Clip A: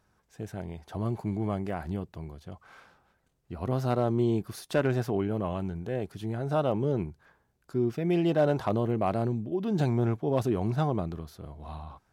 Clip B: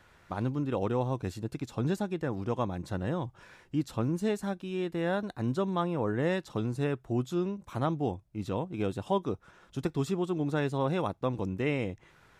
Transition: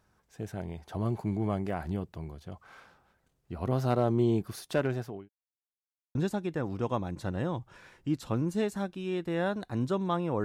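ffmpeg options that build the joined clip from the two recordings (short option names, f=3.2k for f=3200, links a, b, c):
-filter_complex "[0:a]apad=whole_dur=10.44,atrim=end=10.44,asplit=2[a][b];[a]atrim=end=5.29,asetpts=PTS-STARTPTS,afade=t=out:st=4.38:d=0.91:c=qsin[c];[b]atrim=start=5.29:end=6.15,asetpts=PTS-STARTPTS,volume=0[d];[1:a]atrim=start=1.82:end=6.11,asetpts=PTS-STARTPTS,afade=t=in:d=0.004:c=hsin[e];[c][d][e]concat=n=3:v=0:a=1"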